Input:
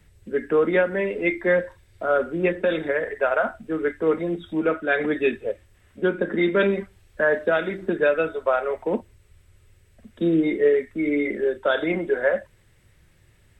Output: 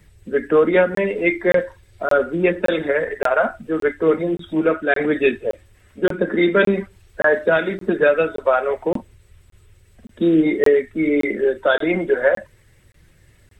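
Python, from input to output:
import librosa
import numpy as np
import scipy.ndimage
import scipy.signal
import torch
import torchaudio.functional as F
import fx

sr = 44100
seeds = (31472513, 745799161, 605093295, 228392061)

y = fx.spec_quant(x, sr, step_db=15)
y = fx.buffer_crackle(y, sr, first_s=0.95, period_s=0.57, block=1024, kind='zero')
y = F.gain(torch.from_numpy(y), 5.0).numpy()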